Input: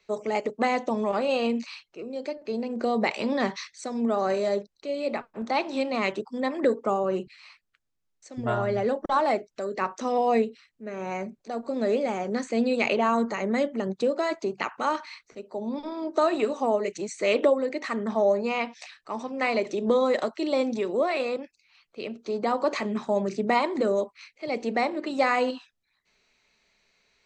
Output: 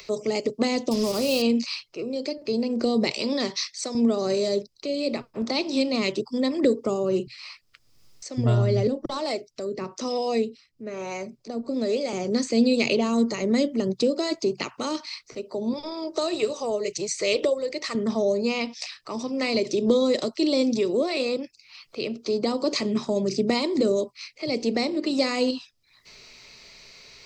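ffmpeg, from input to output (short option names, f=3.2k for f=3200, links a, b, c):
-filter_complex "[0:a]asettb=1/sr,asplit=3[a][b][c];[a]atrim=end=0.914[d];[b]atrim=start=0.91:end=1.42,asetpts=PTS-STARTPTS,afade=t=in:d=0.004:c=qsin,afade=t=out:st=0.506:d=0.004:c=qsin,acrusher=bits=5:mix=0:aa=0.5[e];[c]atrim=start=1.416[f];[d][e]acrossfade=d=0.004:c1=hsin:c2=qsin[g];[g][f]acrossfade=d=0.004:c1=qsin:c2=hsin,asettb=1/sr,asplit=3[h][i][j];[h]atrim=end=3.194[k];[i]atrim=start=3.19:end=3.95,asetpts=PTS-STARTPTS,afade=t=in:d=0.004:c=qsin,afade=t=out:st=0.756:d=0.004:c=qsin,highpass=f=410:p=1[l];[j]atrim=start=3.946[m];[k][l]acrossfade=d=0.004:c1=hsin:c2=qsin[n];[n][m]acrossfade=d=0.004:c1=qsin:c2=hsin,asettb=1/sr,asplit=3[o][p][q];[o]atrim=end=8.874[r];[p]atrim=start=8.87:end=12.13,asetpts=PTS-STARTPTS,afade=t=in:d=0.004:c=qsin,afade=t=out:st=3.256:d=0.004:c=qsin,acrossover=split=430[s][t];[s]aeval=exprs='val(0)*(1-0.7/2+0.7/2*cos(2*PI*1.1*n/s))':c=same[u];[t]aeval=exprs='val(0)*(1-0.7/2-0.7/2*cos(2*PI*1.1*n/s))':c=same[v];[u][v]amix=inputs=2:normalize=0[w];[q]atrim=start=12.126[x];[r][w]acrossfade=d=0.004:c1=hsin:c2=qsin[y];[y][x]acrossfade=d=0.004:c1=qsin:c2=hsin,asettb=1/sr,asplit=3[z][aa][ab];[z]atrim=end=15.734[ac];[aa]atrim=start=15.73:end=17.95,asetpts=PTS-STARTPTS,afade=t=in:d=0.004:c=qsin,afade=t=out:st=2.216:d=0.004:c=qsin,equalizer=f=260:t=o:w=0.55:g=-15[ad];[ab]atrim=start=17.946[ae];[ac][ad]acrossfade=d=0.004:c1=hsin:c2=qsin[af];[af][ae]acrossfade=d=0.004:c1=qsin:c2=hsin,acrossover=split=440|3000[ag][ah][ai];[ah]acompressor=threshold=-44dB:ratio=3[aj];[ag][aj][ai]amix=inputs=3:normalize=0,equalizer=f=125:t=o:w=0.33:g=8,equalizer=f=200:t=o:w=0.33:g=-5,equalizer=f=800:t=o:w=0.33:g=-5,equalizer=f=1.6k:t=o:w=0.33:g=-7,equalizer=f=5k:t=o:w=0.33:g=11,acompressor=mode=upward:threshold=-45dB:ratio=2.5,volume=7.5dB"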